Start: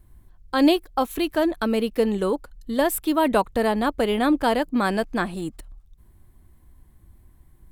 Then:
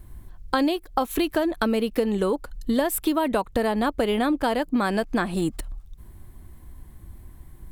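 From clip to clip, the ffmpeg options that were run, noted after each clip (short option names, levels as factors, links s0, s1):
-af "acompressor=threshold=0.0398:ratio=10,volume=2.66"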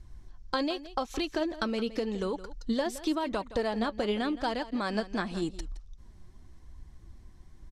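-af "lowpass=f=5700:t=q:w=3.5,flanger=delay=0.4:depth=5.5:regen=63:speed=0.88:shape=triangular,aecho=1:1:168:0.168,volume=0.668"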